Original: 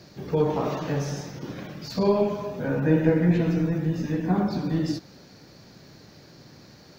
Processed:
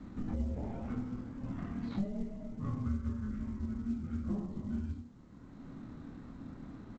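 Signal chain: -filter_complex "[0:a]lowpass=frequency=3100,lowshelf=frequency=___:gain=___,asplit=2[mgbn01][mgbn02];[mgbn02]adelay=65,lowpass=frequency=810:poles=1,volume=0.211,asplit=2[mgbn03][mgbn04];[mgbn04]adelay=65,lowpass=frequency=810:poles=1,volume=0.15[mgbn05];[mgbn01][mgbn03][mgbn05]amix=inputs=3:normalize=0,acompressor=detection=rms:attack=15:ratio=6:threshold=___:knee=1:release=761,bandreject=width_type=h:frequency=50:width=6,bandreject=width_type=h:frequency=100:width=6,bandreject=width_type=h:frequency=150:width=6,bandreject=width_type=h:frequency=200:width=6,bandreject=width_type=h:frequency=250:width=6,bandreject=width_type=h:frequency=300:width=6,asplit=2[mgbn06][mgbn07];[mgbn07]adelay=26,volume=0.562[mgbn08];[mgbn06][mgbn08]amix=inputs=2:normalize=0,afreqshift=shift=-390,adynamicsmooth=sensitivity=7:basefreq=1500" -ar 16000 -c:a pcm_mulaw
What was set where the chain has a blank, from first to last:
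400, 3.5, 0.0224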